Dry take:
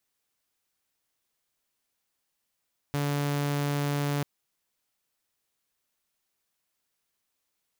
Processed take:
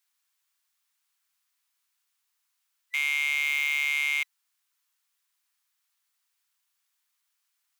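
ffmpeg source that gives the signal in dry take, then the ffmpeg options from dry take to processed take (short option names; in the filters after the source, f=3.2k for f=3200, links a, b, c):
-f lavfi -i "aevalsrc='0.0668*(2*mod(144*t,1)-1)':d=1.29:s=44100"
-filter_complex "[0:a]afftfilt=real='real(if(lt(b,920),b+92*(1-2*mod(floor(b/92),2)),b),0)':imag='imag(if(lt(b,920),b+92*(1-2*mod(floor(b/92),2)),b),0)':win_size=2048:overlap=0.75,highpass=f=970:w=0.5412,highpass=f=970:w=1.3066,asplit=2[a][b];[b]asoftclip=type=tanh:threshold=-28dB,volume=-10.5dB[c];[a][c]amix=inputs=2:normalize=0"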